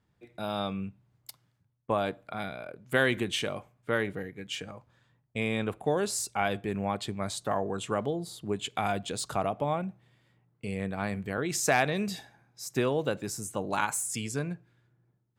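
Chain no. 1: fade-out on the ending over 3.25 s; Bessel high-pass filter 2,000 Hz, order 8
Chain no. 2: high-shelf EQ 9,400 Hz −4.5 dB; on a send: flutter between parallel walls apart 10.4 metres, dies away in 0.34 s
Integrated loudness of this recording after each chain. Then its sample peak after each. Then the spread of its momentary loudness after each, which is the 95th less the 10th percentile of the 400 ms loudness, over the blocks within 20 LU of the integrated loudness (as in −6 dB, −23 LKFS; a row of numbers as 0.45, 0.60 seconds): −38.5, −31.5 LKFS; −18.5, −10.0 dBFS; 17, 13 LU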